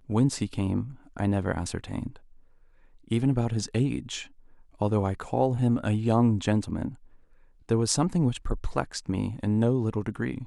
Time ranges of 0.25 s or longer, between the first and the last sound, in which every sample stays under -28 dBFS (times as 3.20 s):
0.82–1.17 s
2.07–3.11 s
4.22–4.81 s
6.88–7.70 s